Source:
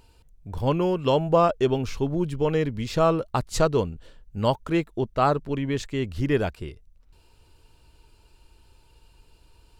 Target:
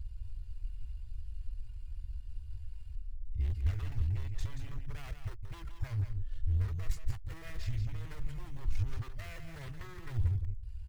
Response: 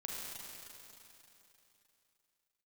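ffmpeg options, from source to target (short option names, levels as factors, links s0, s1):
-filter_complex "[0:a]areverse,asplit=2[s0][s1];[s1]acrusher=samples=13:mix=1:aa=0.000001:lfo=1:lforange=13:lforate=1.1,volume=0.501[s2];[s0][s2]amix=inputs=2:normalize=0,alimiter=limit=0.188:level=0:latency=1:release=30,acompressor=threshold=0.0224:ratio=2.5,aecho=1:1:2.8:0.47,aeval=exprs='0.0335*(abs(mod(val(0)/0.0335+3,4)-2)-1)':c=same,firequalizer=gain_entry='entry(100,0);entry(160,-21);entry(240,-29);entry(510,-30);entry(1900,-17);entry(2700,-20)':delay=0.05:min_phase=1,aeval=exprs='0.0376*(cos(1*acos(clip(val(0)/0.0376,-1,1)))-cos(1*PI/2))+0.000944*(cos(8*acos(clip(val(0)/0.0376,-1,1)))-cos(8*PI/2))':c=same,asplit=2[s3][s4];[s4]aecho=0:1:159:0.422[s5];[s3][s5]amix=inputs=2:normalize=0,atempo=0.9,volume=2.82"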